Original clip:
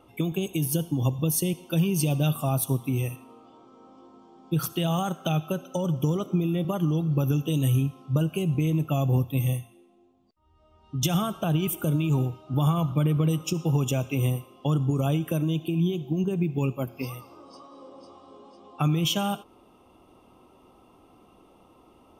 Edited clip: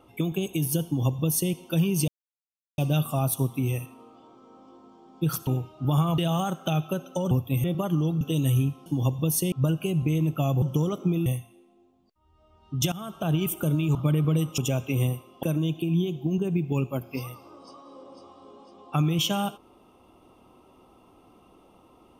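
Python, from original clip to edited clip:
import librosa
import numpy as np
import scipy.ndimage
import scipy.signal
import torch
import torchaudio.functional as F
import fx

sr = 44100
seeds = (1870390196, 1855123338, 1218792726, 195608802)

y = fx.edit(x, sr, fx.duplicate(start_s=0.86, length_s=0.66, to_s=8.04),
    fx.insert_silence(at_s=2.08, length_s=0.7),
    fx.swap(start_s=5.9, length_s=0.64, other_s=9.14, other_length_s=0.33),
    fx.cut(start_s=7.11, length_s=0.28),
    fx.fade_in_from(start_s=11.13, length_s=0.4, floor_db=-19.5),
    fx.move(start_s=12.16, length_s=0.71, to_s=4.77),
    fx.cut(start_s=13.5, length_s=0.31),
    fx.cut(start_s=14.66, length_s=0.63), tone=tone)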